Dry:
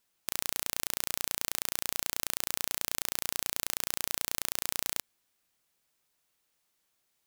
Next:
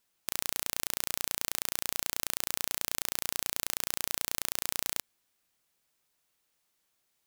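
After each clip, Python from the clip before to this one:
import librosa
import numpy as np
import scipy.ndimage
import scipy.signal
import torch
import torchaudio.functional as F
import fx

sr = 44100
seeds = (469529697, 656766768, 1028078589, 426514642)

y = x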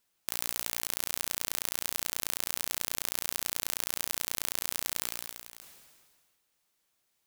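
y = x + 10.0 ** (-16.5 / 20.0) * np.pad(x, (int(603 * sr / 1000.0), 0))[:len(x)]
y = fx.sustainer(y, sr, db_per_s=32.0)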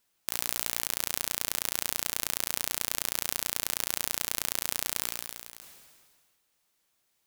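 y = x + 10.0 ** (-23.0 / 20.0) * np.pad(x, (int(76 * sr / 1000.0), 0))[:len(x)]
y = F.gain(torch.from_numpy(y), 2.0).numpy()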